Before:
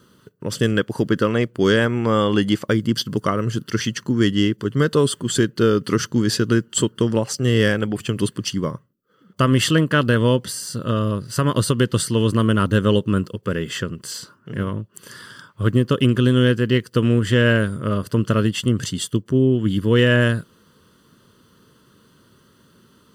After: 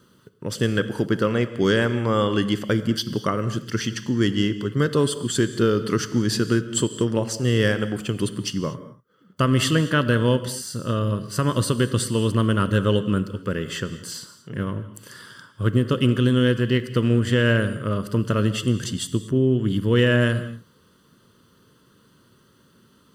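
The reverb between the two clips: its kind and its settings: gated-style reverb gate 260 ms flat, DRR 11.5 dB; trim -3 dB

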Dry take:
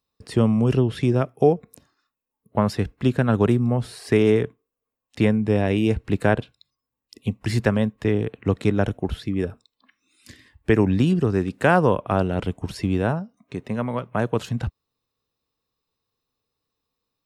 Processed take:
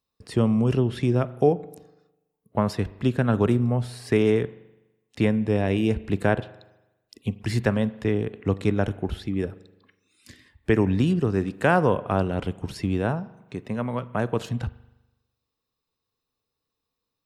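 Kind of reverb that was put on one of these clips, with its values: spring tank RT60 1 s, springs 41 ms, chirp 40 ms, DRR 17 dB; trim -2.5 dB

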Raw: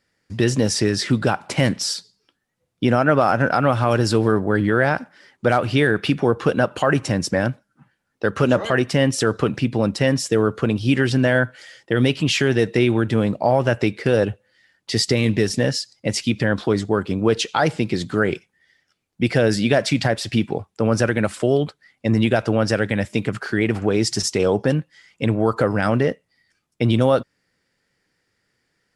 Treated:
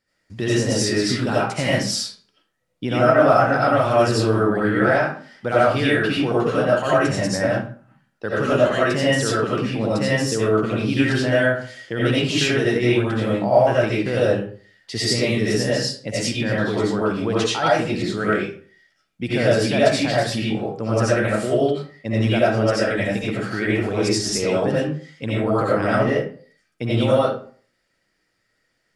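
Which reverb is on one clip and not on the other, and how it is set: algorithmic reverb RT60 0.45 s, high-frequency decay 0.7×, pre-delay 45 ms, DRR -8 dB; trim -7.5 dB

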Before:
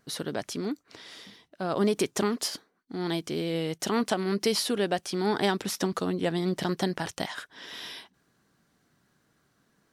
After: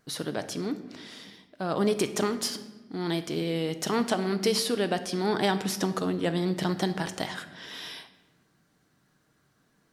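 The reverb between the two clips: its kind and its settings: simulated room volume 770 m³, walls mixed, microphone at 0.51 m

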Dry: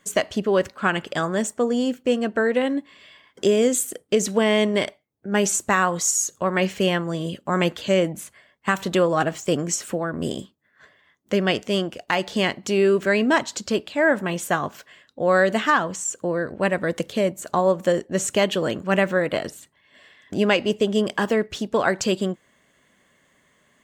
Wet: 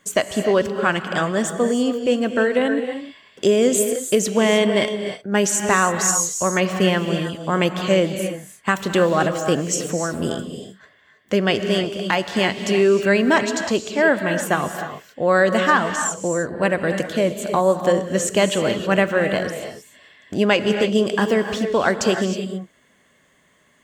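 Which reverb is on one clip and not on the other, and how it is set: gated-style reverb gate 340 ms rising, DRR 7 dB; trim +2 dB

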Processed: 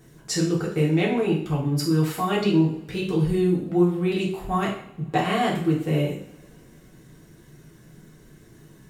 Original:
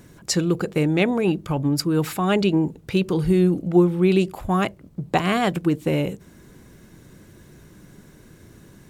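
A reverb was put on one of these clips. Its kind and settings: two-slope reverb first 0.55 s, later 2.7 s, from -27 dB, DRR -4.5 dB; trim -8.5 dB

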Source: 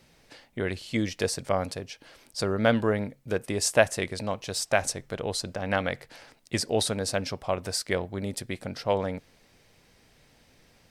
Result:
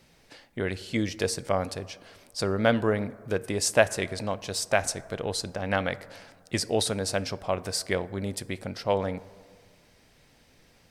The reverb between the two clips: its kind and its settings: plate-style reverb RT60 1.8 s, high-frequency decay 0.3×, DRR 17 dB

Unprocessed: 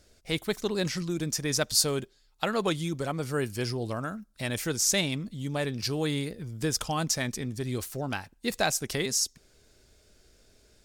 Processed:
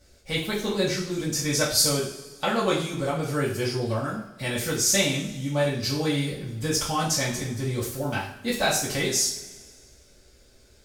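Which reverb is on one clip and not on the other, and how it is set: two-slope reverb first 0.47 s, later 1.8 s, from -17 dB, DRR -8 dB; trim -4 dB

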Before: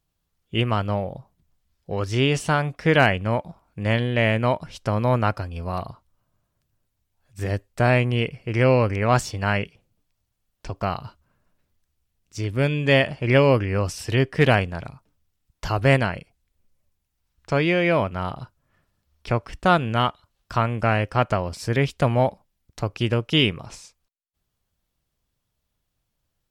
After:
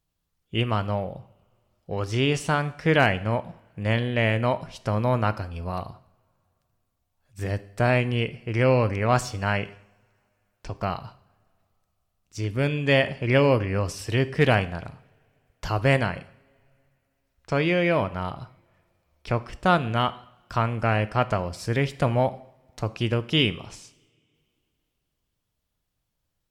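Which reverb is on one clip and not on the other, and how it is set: two-slope reverb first 0.63 s, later 2.9 s, from -25 dB, DRR 13.5 dB; trim -2.5 dB

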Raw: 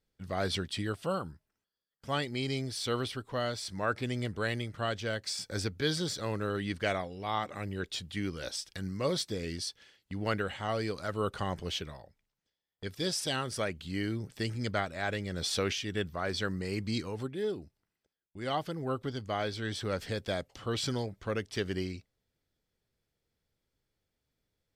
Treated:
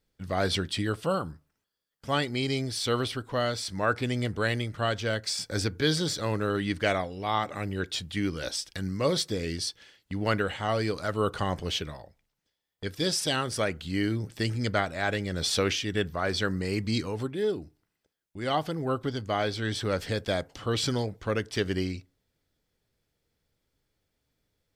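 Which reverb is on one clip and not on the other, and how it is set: FDN reverb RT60 0.35 s, low-frequency decay 1×, high-frequency decay 0.4×, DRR 18.5 dB; trim +5 dB

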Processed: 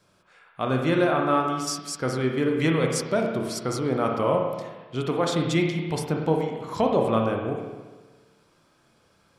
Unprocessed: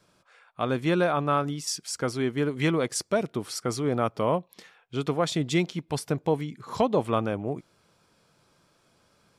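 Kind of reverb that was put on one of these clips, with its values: spring tank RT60 1.3 s, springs 31/53 ms, chirp 70 ms, DRR 1 dB

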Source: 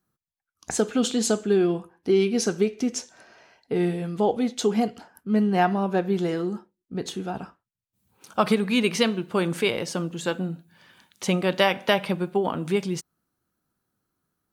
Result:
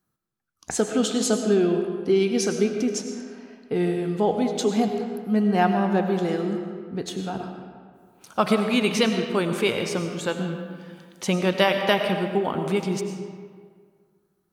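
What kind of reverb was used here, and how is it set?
algorithmic reverb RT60 1.9 s, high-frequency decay 0.6×, pre-delay 60 ms, DRR 5.5 dB

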